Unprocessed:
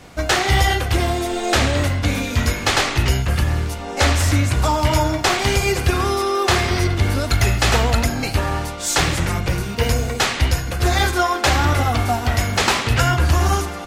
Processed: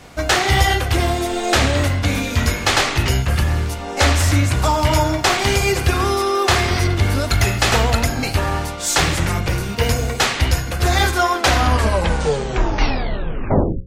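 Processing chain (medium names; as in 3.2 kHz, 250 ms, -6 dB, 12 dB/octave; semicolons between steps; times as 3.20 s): tape stop on the ending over 2.52 s; hum notches 60/120/180/240/300/360/420/480/540 Hz; trim +1.5 dB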